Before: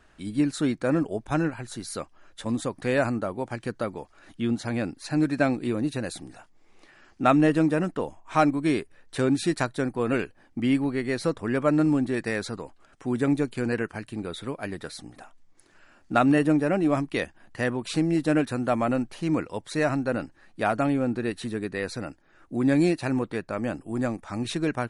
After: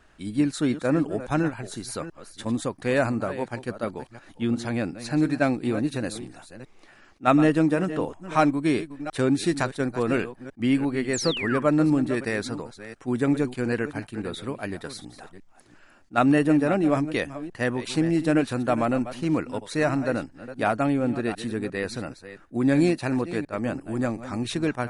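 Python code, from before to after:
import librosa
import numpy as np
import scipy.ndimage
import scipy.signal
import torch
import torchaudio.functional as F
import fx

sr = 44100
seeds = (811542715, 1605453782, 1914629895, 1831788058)

y = fx.reverse_delay(x, sr, ms=350, wet_db=-13)
y = fx.spec_paint(y, sr, seeds[0], shape='fall', start_s=11.13, length_s=0.47, low_hz=970.0, high_hz=8400.0, level_db=-32.0)
y = fx.attack_slew(y, sr, db_per_s=480.0)
y = y * 10.0 ** (1.0 / 20.0)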